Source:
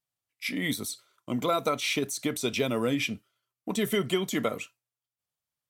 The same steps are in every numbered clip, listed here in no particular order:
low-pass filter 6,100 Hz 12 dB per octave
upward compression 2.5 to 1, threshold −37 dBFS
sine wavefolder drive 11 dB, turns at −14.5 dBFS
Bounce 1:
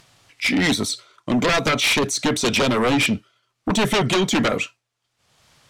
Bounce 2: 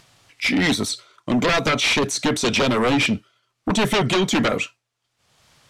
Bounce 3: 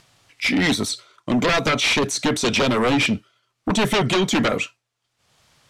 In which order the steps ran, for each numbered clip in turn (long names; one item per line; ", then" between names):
low-pass filter, then sine wavefolder, then upward compression
sine wavefolder, then low-pass filter, then upward compression
sine wavefolder, then upward compression, then low-pass filter